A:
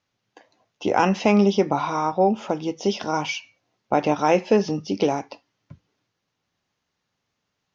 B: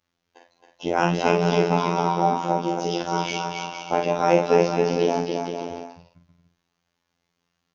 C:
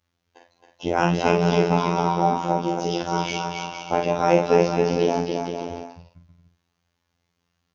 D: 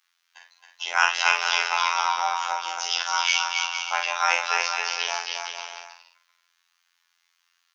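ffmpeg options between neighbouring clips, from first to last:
-filter_complex "[0:a]asplit=2[a][b];[b]adelay=46,volume=-5dB[c];[a][c]amix=inputs=2:normalize=0,aecho=1:1:270|459|591.3|683.9|748.7:0.631|0.398|0.251|0.158|0.1,afftfilt=real='hypot(re,im)*cos(PI*b)':imag='0':win_size=2048:overlap=0.75,volume=1dB"
-af "equalizer=f=64:t=o:w=1.3:g=12.5"
-af "highpass=f=1.2k:w=0.5412,highpass=f=1.2k:w=1.3066,volume=9dB"

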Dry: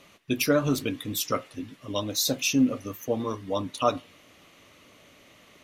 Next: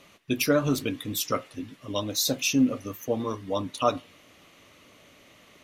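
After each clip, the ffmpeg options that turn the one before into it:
-af anull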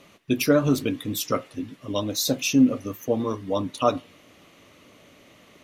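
-af "equalizer=f=250:w=0.36:g=4.5"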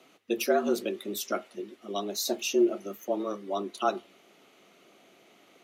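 -af "afreqshift=98,volume=-6dB"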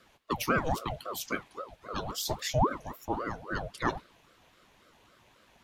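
-af "aeval=exprs='val(0)*sin(2*PI*580*n/s+580*0.6/3.7*sin(2*PI*3.7*n/s))':c=same"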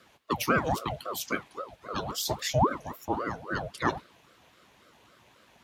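-af "highpass=68,volume=2.5dB"

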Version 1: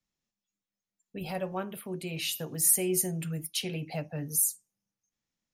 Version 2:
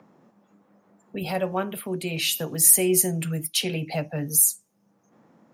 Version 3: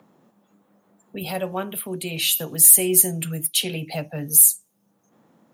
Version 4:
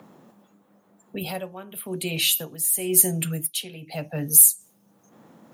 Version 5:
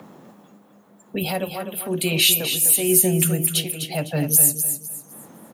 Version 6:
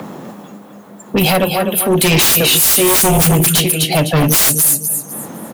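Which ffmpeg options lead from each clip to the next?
-filter_complex "[0:a]lowshelf=f=78:g=-10,acrossover=split=140|1200|2600[a][b][c][d];[b]acompressor=mode=upward:threshold=-41dB:ratio=2.5[e];[a][e][c][d]amix=inputs=4:normalize=0,volume=8dB"
-af "apsyclip=10.5dB,aexciter=amount=1.9:drive=3.6:freq=3k,volume=-11.5dB"
-af "tremolo=f=0.94:d=0.79,areverse,acompressor=mode=upward:threshold=-45dB:ratio=2.5,areverse,volume=1.5dB"
-filter_complex "[0:a]acrossover=split=920[a][b];[b]alimiter=limit=-11dB:level=0:latency=1:release=265[c];[a][c]amix=inputs=2:normalize=0,aecho=1:1:253|506|759|1012:0.398|0.119|0.0358|0.0107,volume=6dB"
-af "aeval=exprs='0.668*sin(PI/2*6.31*val(0)/0.668)':c=same,volume=-4.5dB"

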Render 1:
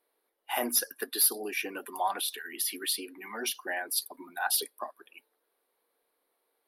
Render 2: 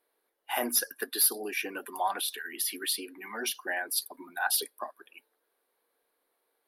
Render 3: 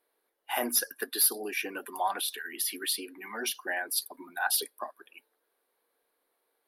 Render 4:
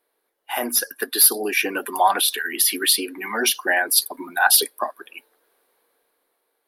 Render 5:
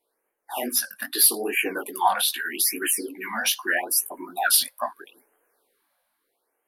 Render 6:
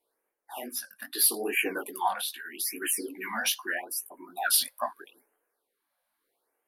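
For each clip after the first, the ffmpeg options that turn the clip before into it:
-af "equalizer=f=1.6k:t=o:w=0.27:g=3.5"
-af anull
-af "dynaudnorm=f=320:g=7:m=9dB,volume=4dB"
-af "flanger=delay=15.5:depth=7.7:speed=2.5,afftfilt=real='re*(1-between(b*sr/1024,340*pow(4600/340,0.5+0.5*sin(2*PI*0.79*pts/sr))/1.41,340*pow(4600/340,0.5+0.5*sin(2*PI*0.79*pts/sr))*1.41))':imag='im*(1-between(b*sr/1024,340*pow(4600/340,0.5+0.5*sin(2*PI*0.79*pts/sr))/1.41,340*pow(4600/340,0.5+0.5*sin(2*PI*0.79*pts/sr))*1.41))':win_size=1024:overlap=0.75"
-af "tremolo=f=0.62:d=0.63,volume=-3dB"

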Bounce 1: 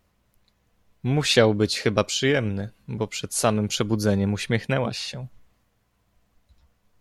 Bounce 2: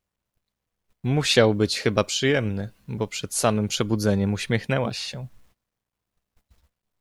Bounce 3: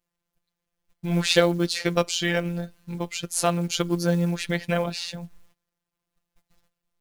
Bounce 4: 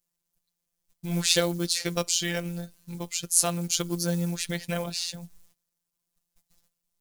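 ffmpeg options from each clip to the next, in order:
-af "acrusher=bits=10:mix=0:aa=0.000001,agate=range=-17dB:threshold=-57dB:ratio=16:detection=peak"
-af "afftfilt=real='hypot(re,im)*cos(PI*b)':imag='0':win_size=1024:overlap=0.75,acrusher=bits=7:mode=log:mix=0:aa=0.000001,volume=2.5dB"
-af "bass=f=250:g=3,treble=f=4k:g=14,volume=-7dB"

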